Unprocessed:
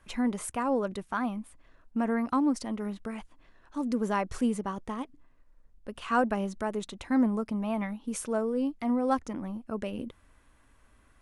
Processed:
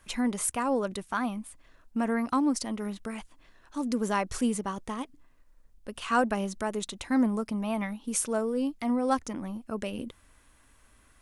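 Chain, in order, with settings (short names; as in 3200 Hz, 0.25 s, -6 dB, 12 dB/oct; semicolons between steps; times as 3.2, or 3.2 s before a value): high shelf 3100 Hz +9.5 dB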